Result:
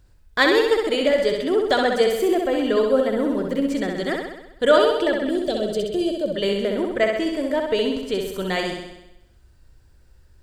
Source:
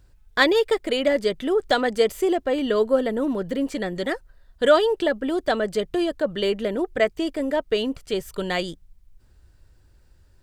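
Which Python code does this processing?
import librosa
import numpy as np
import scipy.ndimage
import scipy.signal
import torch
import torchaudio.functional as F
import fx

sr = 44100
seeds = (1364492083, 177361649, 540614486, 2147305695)

p1 = fx.band_shelf(x, sr, hz=1300.0, db=-15.5, octaves=1.7, at=(5.28, 6.34))
y = p1 + fx.room_flutter(p1, sr, wall_m=11.1, rt60_s=0.91, dry=0)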